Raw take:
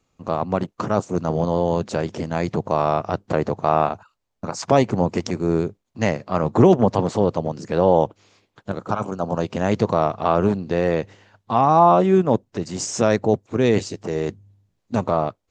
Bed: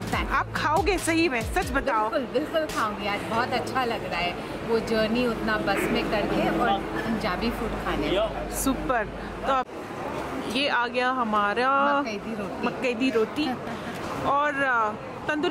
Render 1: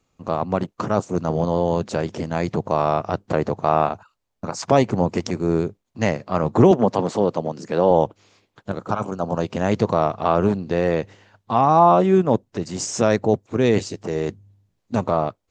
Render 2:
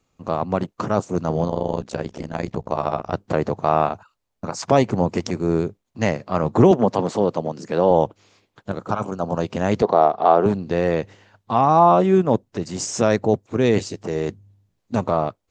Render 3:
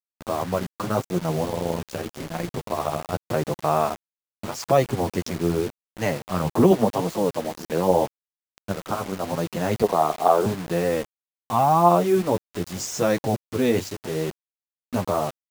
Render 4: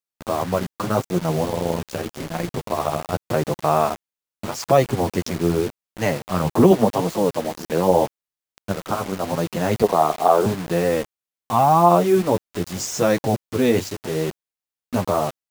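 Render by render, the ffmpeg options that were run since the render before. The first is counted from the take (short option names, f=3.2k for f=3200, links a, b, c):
-filter_complex "[0:a]asettb=1/sr,asplit=3[a][b][c];[a]atrim=end=6.714[d];[b]atrim=start=6.71:end=7.91,asetpts=PTS-STARTPTS,afade=t=in:d=0.004:c=qsin,afade=t=out:st=1.196:d=0.004:c=qsin,highpass=160[e];[c]atrim=start=7.906[f];[d][e]acrossfade=d=0.004:c1=hsin:c2=qsin[g];[g][f]acrossfade=d=0.004:c1=qsin:c2=hsin"
-filter_complex "[0:a]asettb=1/sr,asplit=3[a][b][c];[a]atrim=end=1.484[d];[b]atrim=start=1.48:end=3.13,asetpts=PTS-STARTPTS,afade=t=in:d=0.004:c=qsin,afade=t=out:st=1.646:d=0.004:c=qsin,tremolo=f=62:d=0.889[e];[c]atrim=start=3.126[f];[d][e]acrossfade=d=0.004:c1=hsin:c2=qsin[g];[g][f]acrossfade=d=0.004:c1=qsin:c2=hsin,asettb=1/sr,asplit=3[h][i][j];[h]atrim=end=9.824[k];[i]atrim=start=9.82:end=10.46,asetpts=PTS-STARTPTS,afade=t=in:d=0.004:c=qsin,afade=t=out:st=0.636:d=0.004:c=qsin,highpass=240,equalizer=f=410:t=q:w=4:g=5,equalizer=f=740:t=q:w=4:g=9,equalizer=f=2.6k:t=q:w=4:g=-7,lowpass=f=4.8k:w=0.5412,lowpass=f=4.8k:w=1.3066[l];[j]atrim=start=10.456[m];[k][l]acrossfade=d=0.004:c1=hsin:c2=qsin[n];[n][m]acrossfade=d=0.004:c1=qsin:c2=hsin"
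-af "flanger=delay=5.3:depth=7.6:regen=9:speed=0.84:shape=triangular,acrusher=bits=5:mix=0:aa=0.000001"
-af "volume=3dB,alimiter=limit=-2dB:level=0:latency=1"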